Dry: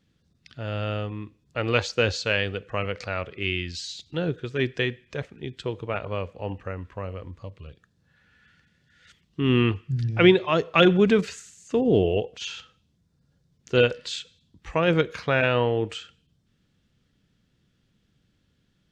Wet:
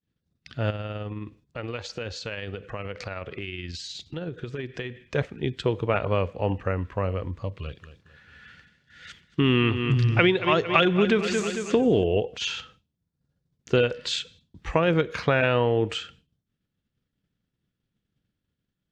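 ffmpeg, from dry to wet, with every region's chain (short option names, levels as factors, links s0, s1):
-filter_complex "[0:a]asettb=1/sr,asplit=3[s0][s1][s2];[s0]atrim=end=0.704[s3];[s1]atrim=start=0.7:end=5.05,asetpts=PTS-STARTPTS,afade=t=in:d=0.004:c=qsin,afade=t=out:st=4.346:d=0.004:c=qsin,acompressor=threshold=0.0158:ratio=5:attack=3.2:release=140:knee=1:detection=peak,tremolo=f=19:d=0.32[s4];[s2]atrim=start=5.046[s5];[s3][s4]acrossfade=d=0.004:c1=hsin:c2=qsin[s6];[s6][s5]acrossfade=d=0.004:c1=qsin:c2=hsin,asettb=1/sr,asplit=3[s7][s8][s9];[s7]atrim=end=7.574[s10];[s8]atrim=start=7.57:end=12.04,asetpts=PTS-STARTPTS,afade=t=in:d=0.004:c=qsin,afade=t=out:st=4.466:d=0.004:c=qsin,equalizer=f=3300:w=0.3:g=6,aecho=1:1:225|450|675|900:0.224|0.101|0.0453|0.0204,atrim=end_sample=197127[s11];[s9]atrim=start=12.036[s12];[s10][s11]acrossfade=d=0.004:c1=hsin:c2=qsin[s13];[s13][s12]acrossfade=d=0.004:c1=qsin:c2=hsin,highshelf=f=4500:g=-6.5,agate=range=0.0224:threshold=0.00178:ratio=3:detection=peak,acompressor=threshold=0.0562:ratio=5,volume=2.24"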